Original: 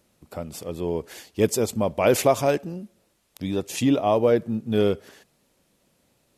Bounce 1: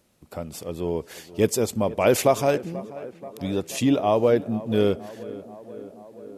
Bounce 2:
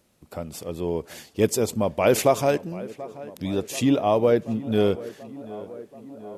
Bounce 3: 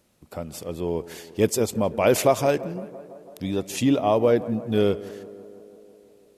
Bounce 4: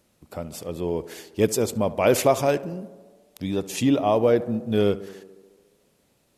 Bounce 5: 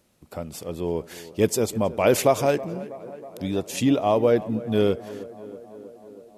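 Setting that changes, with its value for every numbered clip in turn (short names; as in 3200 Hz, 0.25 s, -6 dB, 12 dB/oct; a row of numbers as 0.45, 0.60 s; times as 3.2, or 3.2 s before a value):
tape echo, time: 483, 733, 166, 70, 321 ms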